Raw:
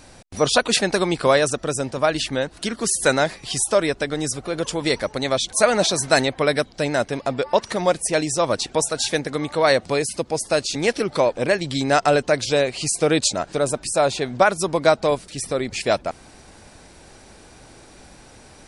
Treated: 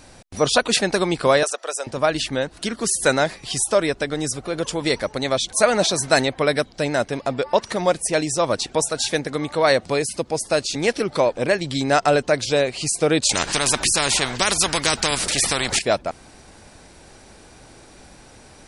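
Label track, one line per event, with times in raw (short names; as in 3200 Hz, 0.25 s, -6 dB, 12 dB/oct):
1.430000	1.870000	HPF 530 Hz 24 dB/oct
13.290000	15.790000	spectral compressor 4:1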